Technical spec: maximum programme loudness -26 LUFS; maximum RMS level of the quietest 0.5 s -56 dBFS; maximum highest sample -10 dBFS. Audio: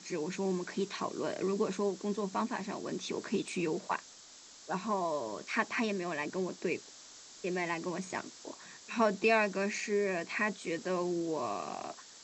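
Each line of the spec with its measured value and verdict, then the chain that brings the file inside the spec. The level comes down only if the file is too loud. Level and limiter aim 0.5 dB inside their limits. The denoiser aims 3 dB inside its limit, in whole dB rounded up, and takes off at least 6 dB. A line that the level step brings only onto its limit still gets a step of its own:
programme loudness -34.5 LUFS: OK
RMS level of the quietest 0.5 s -54 dBFS: fail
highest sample -16.0 dBFS: OK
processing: denoiser 6 dB, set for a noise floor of -54 dBFS

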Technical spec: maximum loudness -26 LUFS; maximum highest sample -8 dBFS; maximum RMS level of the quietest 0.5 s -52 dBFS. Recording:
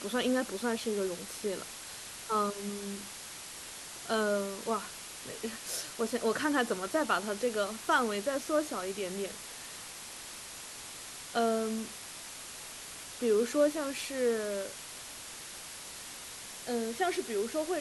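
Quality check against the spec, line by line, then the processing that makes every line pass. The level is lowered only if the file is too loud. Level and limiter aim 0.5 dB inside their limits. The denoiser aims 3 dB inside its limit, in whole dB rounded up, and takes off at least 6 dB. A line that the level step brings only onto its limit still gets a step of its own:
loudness -34.0 LUFS: OK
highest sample -16.0 dBFS: OK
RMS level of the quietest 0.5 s -45 dBFS: fail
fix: denoiser 10 dB, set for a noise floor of -45 dBFS

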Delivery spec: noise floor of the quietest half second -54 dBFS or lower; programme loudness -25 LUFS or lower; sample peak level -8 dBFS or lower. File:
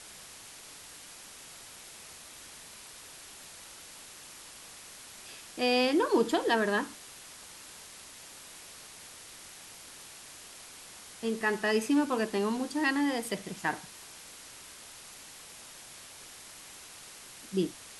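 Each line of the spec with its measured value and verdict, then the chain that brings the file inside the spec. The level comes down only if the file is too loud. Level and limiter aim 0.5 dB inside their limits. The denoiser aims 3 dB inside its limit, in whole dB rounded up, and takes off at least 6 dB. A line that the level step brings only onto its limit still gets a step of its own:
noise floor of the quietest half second -49 dBFS: fail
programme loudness -29.5 LUFS: OK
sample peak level -15.0 dBFS: OK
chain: denoiser 8 dB, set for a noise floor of -49 dBFS

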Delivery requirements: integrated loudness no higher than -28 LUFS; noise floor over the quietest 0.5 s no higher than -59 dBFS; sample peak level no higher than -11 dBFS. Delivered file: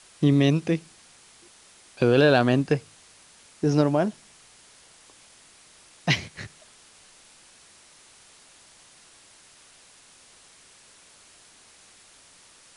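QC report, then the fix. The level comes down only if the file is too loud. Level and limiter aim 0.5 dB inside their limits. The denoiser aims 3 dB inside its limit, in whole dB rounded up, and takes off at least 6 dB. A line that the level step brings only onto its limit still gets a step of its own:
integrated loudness -23.0 LUFS: fail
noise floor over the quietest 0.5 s -54 dBFS: fail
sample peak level -7.0 dBFS: fail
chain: gain -5.5 dB

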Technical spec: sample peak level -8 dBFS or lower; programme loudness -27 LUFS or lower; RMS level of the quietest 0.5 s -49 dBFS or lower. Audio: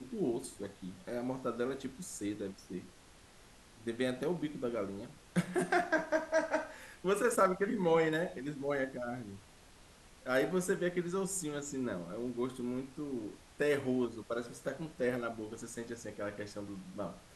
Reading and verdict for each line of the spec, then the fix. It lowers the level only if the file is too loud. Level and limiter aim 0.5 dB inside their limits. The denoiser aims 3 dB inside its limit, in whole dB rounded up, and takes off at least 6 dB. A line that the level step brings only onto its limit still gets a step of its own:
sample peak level -16.5 dBFS: OK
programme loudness -36.0 LUFS: OK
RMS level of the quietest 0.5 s -59 dBFS: OK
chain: none

